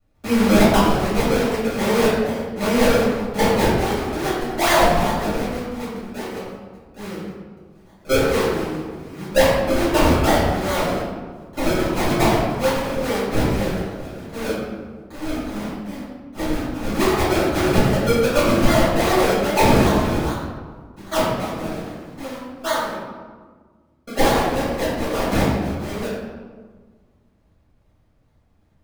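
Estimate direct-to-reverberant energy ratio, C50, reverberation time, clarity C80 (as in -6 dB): -12.0 dB, -0.5 dB, 1.6 s, 2.0 dB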